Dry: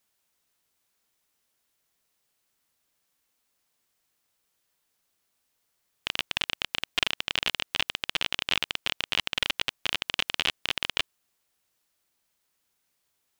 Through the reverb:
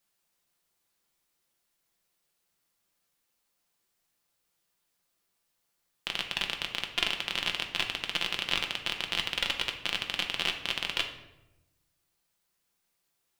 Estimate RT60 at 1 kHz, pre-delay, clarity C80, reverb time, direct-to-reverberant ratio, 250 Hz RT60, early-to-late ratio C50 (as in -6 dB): 0.85 s, 6 ms, 11.5 dB, 1.0 s, 3.0 dB, 1.3 s, 8.5 dB